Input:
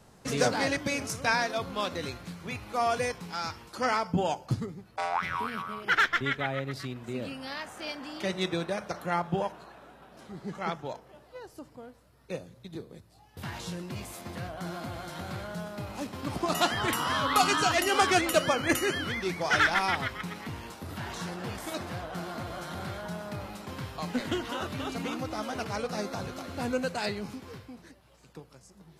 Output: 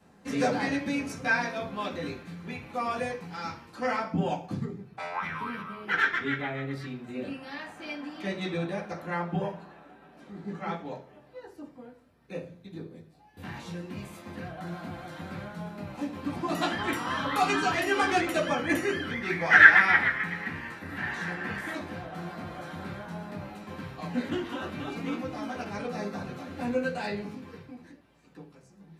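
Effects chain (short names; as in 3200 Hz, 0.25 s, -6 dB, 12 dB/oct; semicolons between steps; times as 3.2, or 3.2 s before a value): 19.23–21.73 bell 1800 Hz +14 dB 0.8 oct; reverb RT60 0.45 s, pre-delay 3 ms, DRR -6.5 dB; gain -10.5 dB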